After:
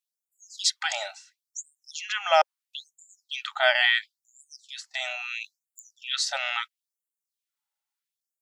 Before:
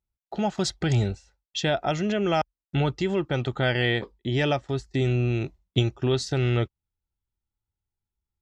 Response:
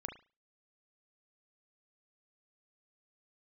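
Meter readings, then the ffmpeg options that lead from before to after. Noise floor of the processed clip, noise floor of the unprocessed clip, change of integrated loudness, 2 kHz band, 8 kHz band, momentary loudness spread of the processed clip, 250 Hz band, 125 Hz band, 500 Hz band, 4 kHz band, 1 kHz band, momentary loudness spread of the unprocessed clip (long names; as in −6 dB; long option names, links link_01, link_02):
below −85 dBFS, below −85 dBFS, 0.0 dB, +4.5 dB, +6.0 dB, 19 LU, below −40 dB, below −40 dB, −5.5 dB, +4.0 dB, +2.0 dB, 6 LU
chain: -af "asubboost=boost=9:cutoff=110,afftfilt=real='re*gte(b*sr/1024,530*pow(7000/530,0.5+0.5*sin(2*PI*0.74*pts/sr)))':imag='im*gte(b*sr/1024,530*pow(7000/530,0.5+0.5*sin(2*PI*0.74*pts/sr)))':win_size=1024:overlap=0.75,volume=6.5dB"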